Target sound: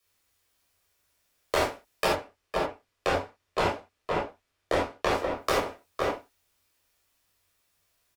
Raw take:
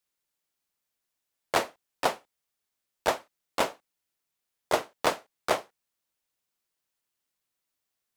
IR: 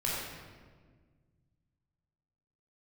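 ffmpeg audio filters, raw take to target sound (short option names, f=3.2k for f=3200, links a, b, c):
-filter_complex "[0:a]asettb=1/sr,asplit=3[a][b][c];[a]atrim=end=2.074[d];[b]atrim=start=2.07:end=5.11,asetpts=PTS-STARTPTS,afade=t=in:d=0.004:c=qsin,afade=t=out:st=3.036:d=0.004:c=qsin,aemphasis=mode=reproduction:type=50kf[e];[c]atrim=start=5.106[f];[d][e]acrossfade=d=0.004:c1=hsin:c2=qsin[g];[g][f]acrossfade=d=0.004:c1=qsin:c2=hsin,asplit=2[h][i];[i]adelay=507.3,volume=-9dB,highshelf=f=4k:g=-11.4[j];[h][j]amix=inputs=2:normalize=0,acompressor=threshold=-33dB:ratio=12[k];[1:a]atrim=start_sample=2205,atrim=end_sample=4410,asetrate=48510,aresample=44100[l];[k][l]afir=irnorm=-1:irlink=0,afreqshift=-95,volume=8.5dB"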